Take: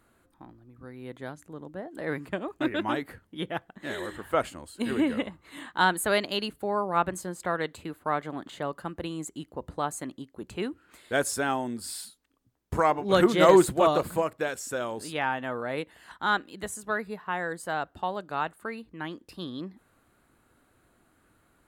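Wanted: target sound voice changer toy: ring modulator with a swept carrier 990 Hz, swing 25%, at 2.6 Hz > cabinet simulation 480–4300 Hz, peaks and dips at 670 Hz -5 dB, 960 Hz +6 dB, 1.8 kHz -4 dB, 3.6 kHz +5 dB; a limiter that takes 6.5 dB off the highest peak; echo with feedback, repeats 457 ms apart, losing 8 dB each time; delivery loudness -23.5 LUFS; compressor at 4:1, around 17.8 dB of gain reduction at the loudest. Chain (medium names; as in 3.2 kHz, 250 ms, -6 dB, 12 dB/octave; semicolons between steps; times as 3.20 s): compression 4:1, threshold -35 dBFS; peak limiter -27.5 dBFS; feedback delay 457 ms, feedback 40%, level -8 dB; ring modulator with a swept carrier 990 Hz, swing 25%, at 2.6 Hz; cabinet simulation 480–4300 Hz, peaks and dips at 670 Hz -5 dB, 960 Hz +6 dB, 1.8 kHz -4 dB, 3.6 kHz +5 dB; trim +19.5 dB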